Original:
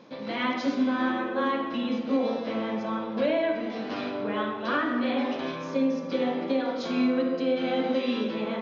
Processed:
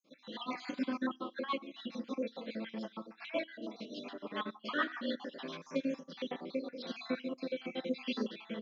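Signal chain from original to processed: random holes in the spectrogram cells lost 54%; resonant low shelf 130 Hz -10.5 dB, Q 3; rotary cabinet horn 7 Hz, later 1 Hz, at 5.43 s; tilt EQ +3 dB/octave; on a send at -20 dB: reverberation RT60 0.40 s, pre-delay 3 ms; on the sum: upward expansion 1.5:1, over -49 dBFS; trim -2.5 dB

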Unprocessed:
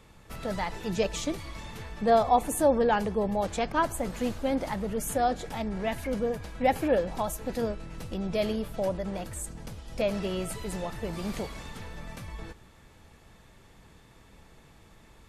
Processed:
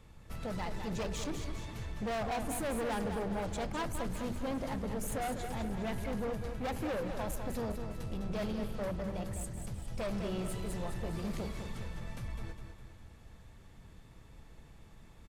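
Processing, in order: bass shelf 190 Hz +9.5 dB; de-hum 48.44 Hz, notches 9; hard clipper -27 dBFS, distortion -7 dB; on a send: feedback delay 204 ms, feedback 48%, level -7.5 dB; on the sum: trim -6.5 dB

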